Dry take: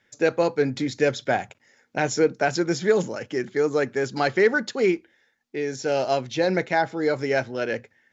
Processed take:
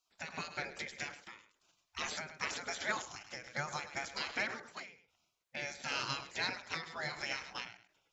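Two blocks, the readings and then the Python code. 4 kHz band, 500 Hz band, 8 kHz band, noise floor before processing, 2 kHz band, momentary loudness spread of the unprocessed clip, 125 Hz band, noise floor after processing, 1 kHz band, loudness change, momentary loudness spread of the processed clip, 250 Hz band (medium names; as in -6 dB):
-6.0 dB, -27.0 dB, no reading, -67 dBFS, -11.0 dB, 8 LU, -19.0 dB, -82 dBFS, -14.5 dB, -15.5 dB, 12 LU, -25.5 dB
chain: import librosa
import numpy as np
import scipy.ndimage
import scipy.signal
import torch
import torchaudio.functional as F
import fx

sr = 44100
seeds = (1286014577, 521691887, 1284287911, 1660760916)

p1 = fx.spec_gate(x, sr, threshold_db=-20, keep='weak')
p2 = fx.high_shelf(p1, sr, hz=5100.0, db=-3.0)
p3 = fx.level_steps(p2, sr, step_db=24)
p4 = p2 + (p3 * librosa.db_to_amplitude(1.5))
p5 = p4 + 10.0 ** (-15.0 / 20.0) * np.pad(p4, (int(104 * sr / 1000.0), 0))[:len(p4)]
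p6 = fx.end_taper(p5, sr, db_per_s=110.0)
y = p6 * librosa.db_to_amplitude(-2.0)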